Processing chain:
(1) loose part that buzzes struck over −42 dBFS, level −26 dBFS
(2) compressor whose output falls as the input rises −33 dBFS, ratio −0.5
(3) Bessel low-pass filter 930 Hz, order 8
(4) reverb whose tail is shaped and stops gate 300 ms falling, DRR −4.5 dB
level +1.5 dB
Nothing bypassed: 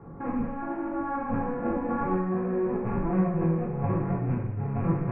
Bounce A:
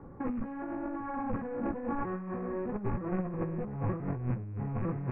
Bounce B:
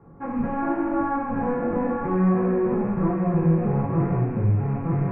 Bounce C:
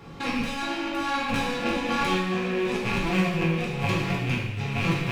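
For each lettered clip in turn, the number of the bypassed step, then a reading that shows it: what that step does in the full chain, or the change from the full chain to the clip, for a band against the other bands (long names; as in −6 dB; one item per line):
4, change in momentary loudness spread −2 LU
2, change in integrated loudness +5.0 LU
3, 2 kHz band +14.5 dB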